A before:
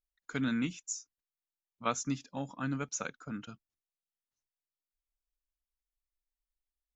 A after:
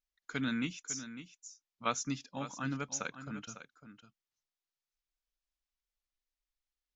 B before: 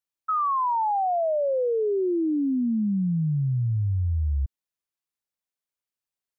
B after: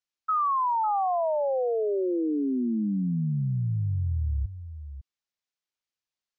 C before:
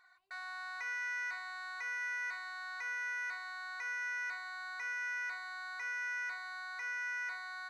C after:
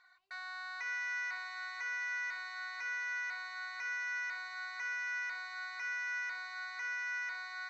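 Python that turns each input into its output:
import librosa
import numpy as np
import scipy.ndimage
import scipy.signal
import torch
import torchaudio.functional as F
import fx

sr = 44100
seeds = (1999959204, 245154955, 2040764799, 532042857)

y = scipy.signal.sosfilt(scipy.signal.butter(4, 6500.0, 'lowpass', fs=sr, output='sos'), x)
y = fx.tilt_shelf(y, sr, db=-3.0, hz=1500.0)
y = y + 10.0 ** (-12.0 / 20.0) * np.pad(y, (int(552 * sr / 1000.0), 0))[:len(y)]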